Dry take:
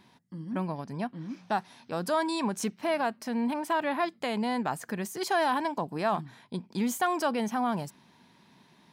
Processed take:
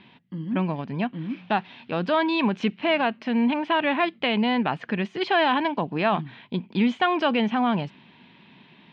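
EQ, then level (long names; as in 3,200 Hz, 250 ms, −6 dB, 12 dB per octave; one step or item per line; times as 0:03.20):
low-pass filter 3,600 Hz 24 dB per octave
parametric band 220 Hz +6 dB 2.8 octaves
parametric band 2,800 Hz +13 dB 1.1 octaves
+1.5 dB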